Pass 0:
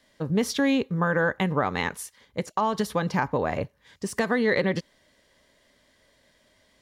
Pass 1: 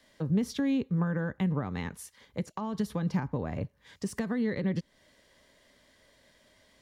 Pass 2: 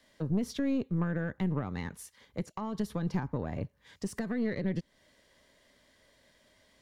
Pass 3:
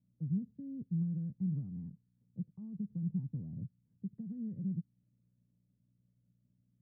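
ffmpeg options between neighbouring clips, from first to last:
-filter_complex "[0:a]acrossover=split=270[s0][s1];[s1]acompressor=threshold=0.00891:ratio=3[s2];[s0][s2]amix=inputs=2:normalize=0"
-af "aeval=exprs='(tanh(12.6*val(0)+0.5)-tanh(0.5))/12.6':c=same"
-af "aeval=exprs='val(0)+0.000562*(sin(2*PI*60*n/s)+sin(2*PI*2*60*n/s)/2+sin(2*PI*3*60*n/s)/3+sin(2*PI*4*60*n/s)/4+sin(2*PI*5*60*n/s)/5)':c=same,asuperpass=centerf=150:order=4:qfactor=1.5,volume=0.75"

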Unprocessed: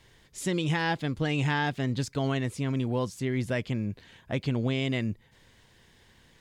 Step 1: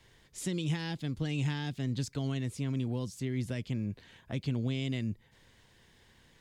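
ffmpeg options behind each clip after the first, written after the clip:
-filter_complex "[0:a]acrossover=split=320|3000[s0][s1][s2];[s1]acompressor=threshold=0.00794:ratio=4[s3];[s0][s3][s2]amix=inputs=3:normalize=0,volume=0.708"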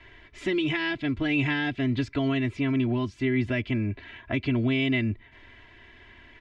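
-af "lowpass=f=2300:t=q:w=2.1,aecho=1:1:3:0.92,volume=2.24"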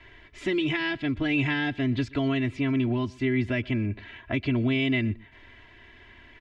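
-af "aecho=1:1:123:0.0668"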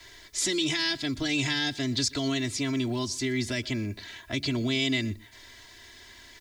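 -filter_complex "[0:a]acrossover=split=350|2000[s0][s1][s2];[s0]flanger=delay=8.7:depth=7.7:regen=87:speed=0.37:shape=triangular[s3];[s1]alimiter=level_in=1.68:limit=0.0631:level=0:latency=1,volume=0.596[s4];[s2]aexciter=amount=9.6:drive=8.5:freq=4100[s5];[s3][s4][s5]amix=inputs=3:normalize=0"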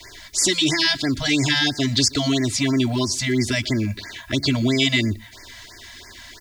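-af "afftfilt=real='re*(1-between(b*sr/1024,320*pow(3300/320,0.5+0.5*sin(2*PI*3*pts/sr))/1.41,320*pow(3300/320,0.5+0.5*sin(2*PI*3*pts/sr))*1.41))':imag='im*(1-between(b*sr/1024,320*pow(3300/320,0.5+0.5*sin(2*PI*3*pts/sr))/1.41,320*pow(3300/320,0.5+0.5*sin(2*PI*3*pts/sr))*1.41))':win_size=1024:overlap=0.75,volume=2.82"

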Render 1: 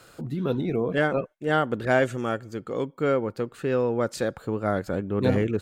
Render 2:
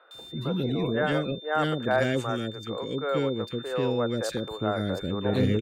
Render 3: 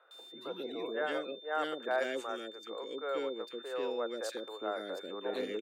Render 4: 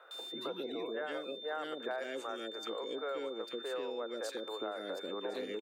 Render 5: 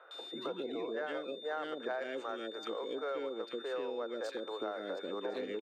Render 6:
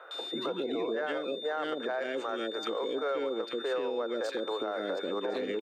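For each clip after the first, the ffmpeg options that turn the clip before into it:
-filter_complex "[0:a]aeval=exprs='val(0)+0.00708*sin(2*PI*3600*n/s)':c=same,acrossover=split=470|1800[s0][s1][s2];[s2]adelay=110[s3];[s0]adelay=140[s4];[s4][s1][s3]amix=inputs=3:normalize=0"
-af "highpass=f=330:w=0.5412,highpass=f=330:w=1.3066,volume=0.422"
-af "acompressor=threshold=0.00631:ratio=6,aecho=1:1:1060:0.133,volume=2.37"
-af "adynamicsmooth=sensitivity=7.5:basefreq=4000,volume=1.12"
-af "alimiter=level_in=2.51:limit=0.0631:level=0:latency=1:release=62,volume=0.398,volume=2.51"

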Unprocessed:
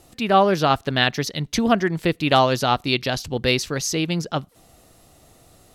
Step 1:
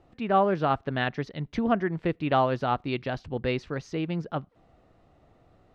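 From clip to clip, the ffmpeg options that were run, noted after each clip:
-af "lowpass=1900,volume=0.501"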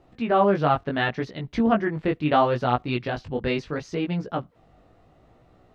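-af "flanger=delay=16:depth=4.7:speed=0.72,volume=2.11"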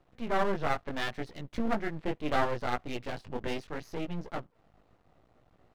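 -af "aeval=exprs='max(val(0),0)':c=same,volume=0.596"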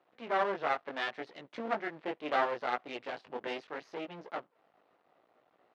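-af "highpass=410,lowpass=3800"

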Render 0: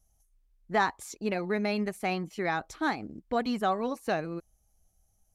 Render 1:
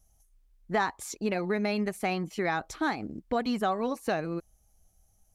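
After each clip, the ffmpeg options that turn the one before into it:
-af "acompressor=threshold=0.0282:ratio=2,volume=1.58"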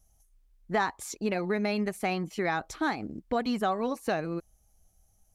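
-af anull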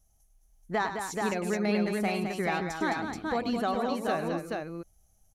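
-af "aecho=1:1:101|212|429:0.299|0.447|0.668,volume=0.794"

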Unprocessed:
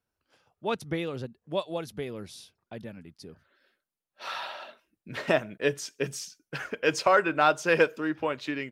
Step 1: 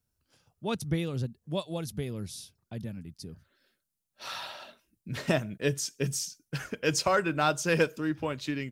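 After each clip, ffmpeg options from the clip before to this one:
-af "bass=f=250:g=14,treble=f=4000:g=12,volume=0.562"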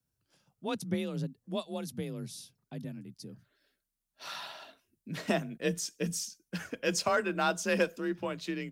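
-af "afreqshift=34,volume=0.708"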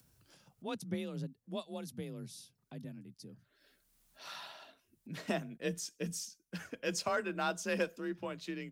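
-af "acompressor=mode=upward:threshold=0.00501:ratio=2.5,volume=0.531"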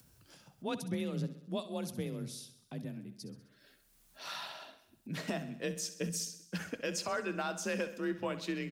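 -af "alimiter=level_in=1.88:limit=0.0631:level=0:latency=1:release=215,volume=0.531,aecho=1:1:65|130|195|260|325|390:0.211|0.125|0.0736|0.0434|0.0256|0.0151,volume=1.68"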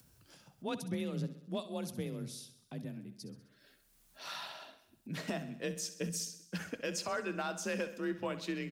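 -af "asoftclip=type=hard:threshold=0.0501,volume=0.891"

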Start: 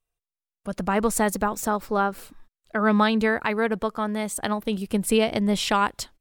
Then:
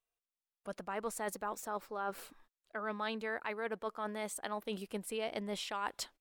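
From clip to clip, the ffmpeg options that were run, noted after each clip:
-af "bass=f=250:g=-14,treble=f=4000:g=-3,areverse,acompressor=threshold=0.0251:ratio=5,areverse,volume=0.631"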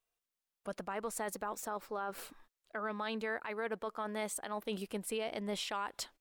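-af "alimiter=level_in=2.24:limit=0.0631:level=0:latency=1:release=113,volume=0.447,volume=1.41"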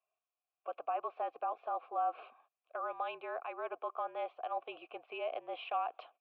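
-filter_complex "[0:a]highpass=f=390:t=q:w=0.5412,highpass=f=390:t=q:w=1.307,lowpass=f=3400:t=q:w=0.5176,lowpass=f=3400:t=q:w=0.7071,lowpass=f=3400:t=q:w=1.932,afreqshift=-52,asplit=3[s0][s1][s2];[s0]bandpass=f=730:t=q:w=8,volume=1[s3];[s1]bandpass=f=1090:t=q:w=8,volume=0.501[s4];[s2]bandpass=f=2440:t=q:w=8,volume=0.355[s5];[s3][s4][s5]amix=inputs=3:normalize=0,volume=3.55"

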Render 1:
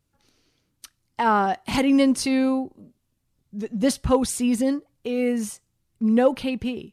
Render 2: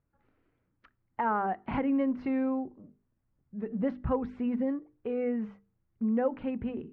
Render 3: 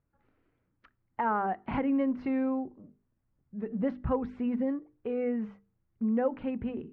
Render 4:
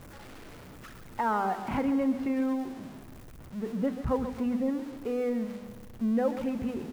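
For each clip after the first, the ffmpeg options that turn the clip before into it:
-af "lowpass=f=1900:w=0.5412,lowpass=f=1900:w=1.3066,bandreject=f=50:t=h:w=6,bandreject=f=100:t=h:w=6,bandreject=f=150:t=h:w=6,bandreject=f=200:t=h:w=6,bandreject=f=250:t=h:w=6,bandreject=f=300:t=h:w=6,bandreject=f=350:t=h:w=6,bandreject=f=400:t=h:w=6,bandreject=f=450:t=h:w=6,acompressor=threshold=0.0501:ratio=2,volume=0.668"
-af anull
-filter_complex "[0:a]aeval=exprs='val(0)+0.5*0.00841*sgn(val(0))':c=same,asplit=2[s0][s1];[s1]aecho=0:1:136|272|408|544|680:0.282|0.144|0.0733|0.0374|0.0191[s2];[s0][s2]amix=inputs=2:normalize=0"

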